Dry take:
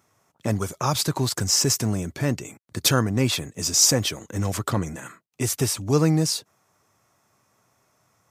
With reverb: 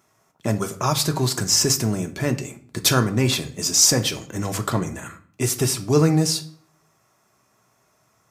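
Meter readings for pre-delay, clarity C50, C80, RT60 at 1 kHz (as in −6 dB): 3 ms, 15.0 dB, 18.5 dB, 0.50 s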